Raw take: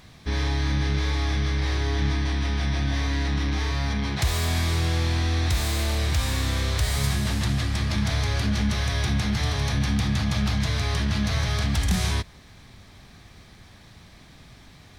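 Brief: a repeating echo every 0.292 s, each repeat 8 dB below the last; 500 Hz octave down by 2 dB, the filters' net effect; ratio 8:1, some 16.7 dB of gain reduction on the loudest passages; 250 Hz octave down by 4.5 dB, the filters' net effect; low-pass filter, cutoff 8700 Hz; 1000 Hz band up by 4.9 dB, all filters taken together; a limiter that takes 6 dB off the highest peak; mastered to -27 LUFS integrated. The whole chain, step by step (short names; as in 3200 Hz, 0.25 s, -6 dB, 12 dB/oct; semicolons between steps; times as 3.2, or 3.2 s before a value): LPF 8700 Hz; bell 250 Hz -6 dB; bell 500 Hz -3.5 dB; bell 1000 Hz +7.5 dB; compressor 8:1, threshold -38 dBFS; limiter -34 dBFS; feedback echo 0.292 s, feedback 40%, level -8 dB; gain +15.5 dB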